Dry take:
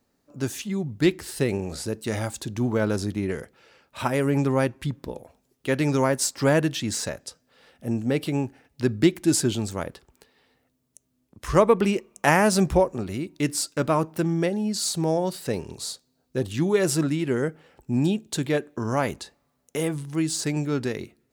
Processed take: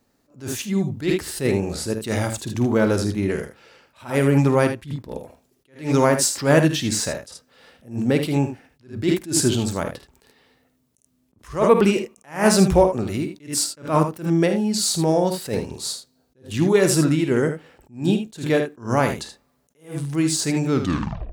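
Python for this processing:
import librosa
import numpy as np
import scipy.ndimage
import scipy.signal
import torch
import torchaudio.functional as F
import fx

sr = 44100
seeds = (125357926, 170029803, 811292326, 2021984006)

y = fx.tape_stop_end(x, sr, length_s=0.6)
y = fx.room_early_taps(y, sr, ms=(51, 78), db=(-11.0, -9.5))
y = fx.attack_slew(y, sr, db_per_s=180.0)
y = F.gain(torch.from_numpy(y), 4.5).numpy()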